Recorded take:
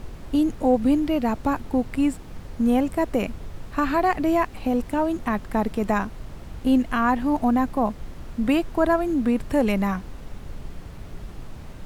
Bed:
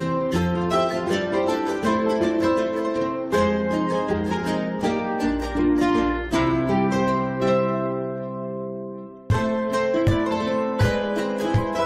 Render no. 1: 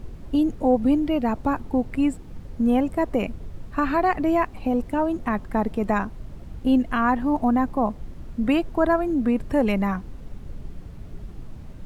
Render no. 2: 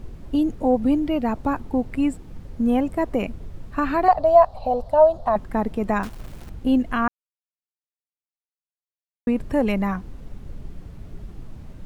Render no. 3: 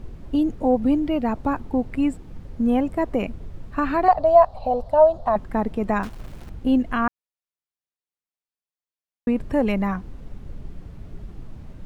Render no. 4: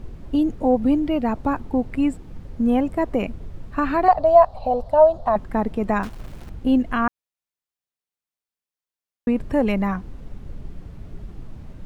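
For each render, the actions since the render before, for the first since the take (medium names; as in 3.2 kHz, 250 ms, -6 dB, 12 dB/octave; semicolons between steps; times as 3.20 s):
noise reduction 8 dB, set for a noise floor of -40 dBFS
4.08–5.36 s: FFT filter 120 Hz 0 dB, 340 Hz -16 dB, 620 Hz +14 dB, 2.3 kHz -14 dB, 4.2 kHz +6 dB, 6.5 kHz -7 dB; 6.03–6.51 s: block-companded coder 3-bit; 7.08–9.27 s: mute
treble shelf 6 kHz -5.5 dB
trim +1 dB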